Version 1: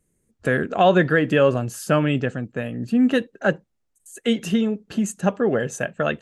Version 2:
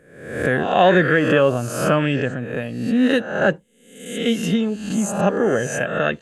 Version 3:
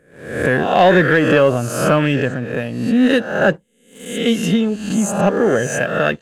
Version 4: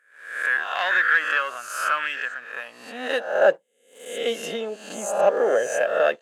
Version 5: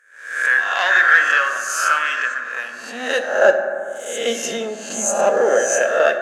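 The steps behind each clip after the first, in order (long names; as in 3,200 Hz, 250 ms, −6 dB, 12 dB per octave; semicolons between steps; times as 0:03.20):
peak hold with a rise ahead of every peak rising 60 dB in 0.75 s
leveller curve on the samples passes 1
high-pass filter sweep 1,400 Hz → 570 Hz, 0:02.35–0:03.39; level −7.5 dB
graphic EQ with 15 bands 100 Hz −9 dB, 1,600 Hz +3 dB, 6,300 Hz +12 dB; convolution reverb RT60 2.3 s, pre-delay 4 ms, DRR 5 dB; level +3 dB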